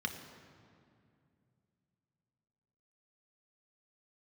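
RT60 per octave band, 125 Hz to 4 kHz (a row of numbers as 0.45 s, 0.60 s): 3.8 s, 3.3 s, 2.6 s, 2.2 s, 2.0 s, 1.6 s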